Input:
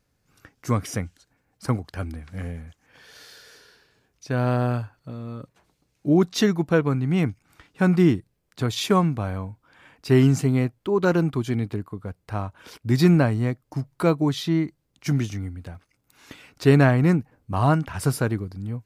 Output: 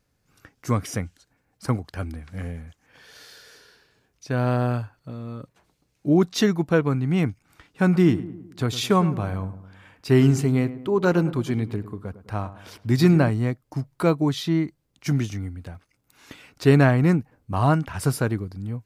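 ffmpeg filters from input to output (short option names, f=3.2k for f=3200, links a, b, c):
-filter_complex "[0:a]asettb=1/sr,asplit=3[a][b][c];[a]atrim=end=7.854[d];[b]atrim=start=7.85:end=13.3,asetpts=PTS-STARTPTS,afade=t=in:d=0.004:c=qsin,afade=t=out:st=5.446:d=0.004:c=qsin,asplit=2[e][f];[f]adelay=105,lowpass=f=1.5k:p=1,volume=-13.5dB,asplit=2[g][h];[h]adelay=105,lowpass=f=1.5k:p=1,volume=0.53,asplit=2[i][j];[j]adelay=105,lowpass=f=1.5k:p=1,volume=0.53,asplit=2[k][l];[l]adelay=105,lowpass=f=1.5k:p=1,volume=0.53,asplit=2[m][n];[n]adelay=105,lowpass=f=1.5k:p=1,volume=0.53[o];[e][g][i][k][m][o]amix=inputs=6:normalize=0,atrim=end_sample=240345[p];[c]atrim=start=13.296[q];[d][p]acrossfade=d=0.004:c1=hsin:c2=qsin[r];[r][q]acrossfade=d=0.004:c1=qsin:c2=hsin"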